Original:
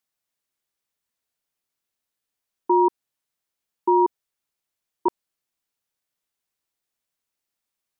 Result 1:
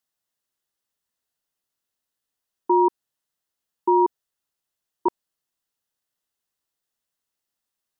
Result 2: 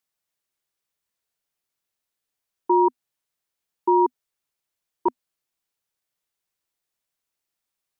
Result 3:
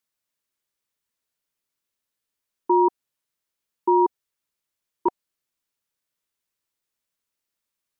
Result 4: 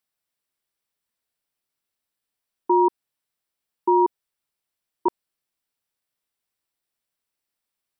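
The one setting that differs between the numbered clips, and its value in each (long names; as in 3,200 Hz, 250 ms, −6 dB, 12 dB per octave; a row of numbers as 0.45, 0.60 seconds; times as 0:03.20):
notch filter, centre frequency: 2,300, 250, 750, 6,600 Hertz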